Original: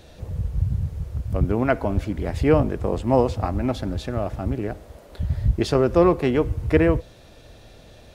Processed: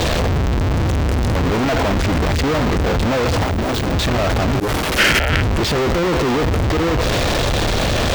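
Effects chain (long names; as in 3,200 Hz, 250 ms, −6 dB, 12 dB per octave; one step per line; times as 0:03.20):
sign of each sample alone
0:03.42–0:03.93: mains-hum notches 60/120/180/240 Hz
0:04.60–0:05.30: parametric band 260 Hz +11.5 dB 2.4 octaves
volume swells 474 ms
leveller curve on the samples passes 2
sine wavefolder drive 12 dB, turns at −14 dBFS
0:04.99–0:05.42: gain on a spectral selection 1,300–3,300 Hz +12 dB
tube saturation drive 5 dB, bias 0.7
level +2 dB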